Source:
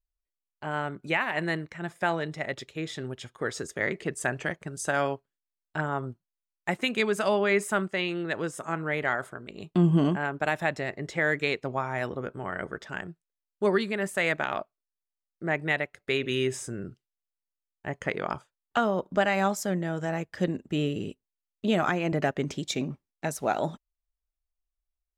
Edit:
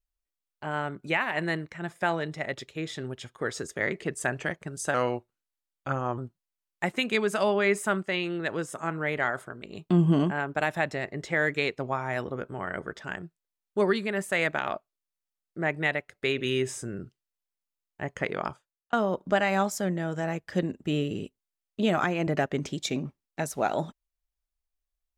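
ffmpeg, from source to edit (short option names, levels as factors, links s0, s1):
-filter_complex "[0:a]asplit=4[s0][s1][s2][s3];[s0]atrim=end=4.944[s4];[s1]atrim=start=4.94:end=6.03,asetpts=PTS-STARTPTS,asetrate=38808,aresample=44100[s5];[s2]atrim=start=6.026:end=18.78,asetpts=PTS-STARTPTS,afade=t=out:st=12.254:d=0.5[s6];[s3]atrim=start=18.78,asetpts=PTS-STARTPTS,afade=t=in:d=0.004:c=hsin[s7];[s4][s5]acrossfade=d=0.004:c1=hsin:c2=hsin[s8];[s6][s7]concat=n=2:v=0:a=1[s9];[s8][s9]acrossfade=d=0.004:c1=hsin:c2=hsin"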